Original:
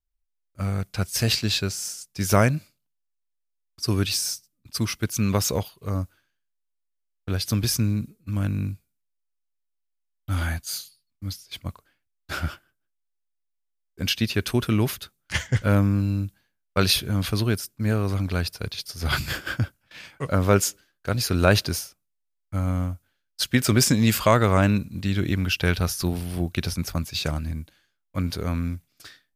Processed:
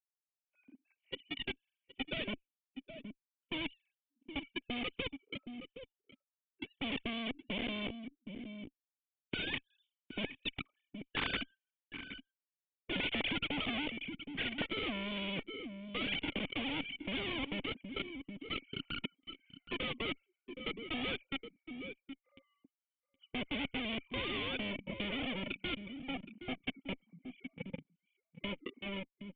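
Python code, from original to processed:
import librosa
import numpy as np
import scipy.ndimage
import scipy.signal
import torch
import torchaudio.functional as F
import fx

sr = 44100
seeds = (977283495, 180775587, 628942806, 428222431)

p1 = fx.sine_speech(x, sr)
p2 = fx.doppler_pass(p1, sr, speed_mps=32, closest_m=10.0, pass_at_s=11.61)
p3 = fx.hpss(p2, sr, part='percussive', gain_db=-12)
p4 = fx.fuzz(p3, sr, gain_db=64.0, gate_db=-58.0)
p5 = p3 + (p4 * librosa.db_to_amplitude(-12.0))
p6 = fx.formant_cascade(p5, sr, vowel='i')
p7 = p6 + fx.echo_single(p6, sr, ms=769, db=-18.5, dry=0)
p8 = fx.spectral_comp(p7, sr, ratio=4.0)
y = p8 * librosa.db_to_amplitude(-1.0)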